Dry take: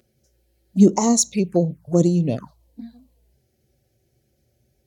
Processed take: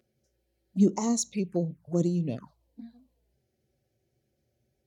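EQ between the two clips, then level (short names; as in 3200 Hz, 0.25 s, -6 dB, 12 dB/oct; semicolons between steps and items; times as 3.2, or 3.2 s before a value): dynamic EQ 670 Hz, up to -5 dB, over -33 dBFS, Q 0.92; low shelf 75 Hz -9 dB; high shelf 5100 Hz -7 dB; -7.0 dB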